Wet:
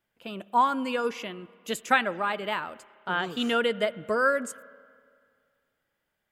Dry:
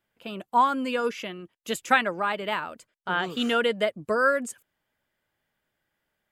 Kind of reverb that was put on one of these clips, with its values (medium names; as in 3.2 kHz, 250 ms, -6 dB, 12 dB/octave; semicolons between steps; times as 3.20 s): spring tank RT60 2.1 s, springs 30/55 ms, chirp 70 ms, DRR 19 dB; trim -1.5 dB